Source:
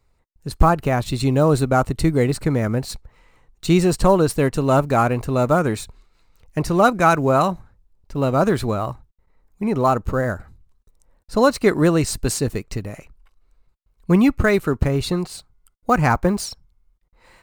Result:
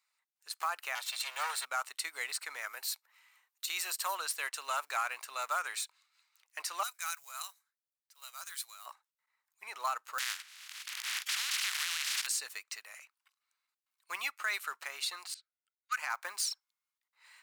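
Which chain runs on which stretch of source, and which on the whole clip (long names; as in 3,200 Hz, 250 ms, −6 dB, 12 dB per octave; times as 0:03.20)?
0:00.95–0:01.65: lower of the sound and its delayed copy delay 2.2 ms + high-pass filter 550 Hz 24 dB per octave
0:02.67–0:04.15: high-pass filter 230 Hz + parametric band 14,000 Hz +13 dB 0.44 octaves
0:06.83–0:08.86: first difference + notch filter 2,700 Hz, Q 20 + one half of a high-frequency compander decoder only
0:10.18–0:12.25: compressing power law on the bin magnitudes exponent 0.14 + resonant band-pass 2,200 Hz, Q 0.75 + background raised ahead of every attack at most 34 dB per second
0:15.34–0:15.97: Butterworth high-pass 1,300 Hz 72 dB per octave + low-pass that shuts in the quiet parts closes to 2,900 Hz, open at −26 dBFS + expander for the loud parts, over −42 dBFS
whole clip: Bessel high-pass filter 1,700 Hz, order 4; brickwall limiter −20 dBFS; level −3 dB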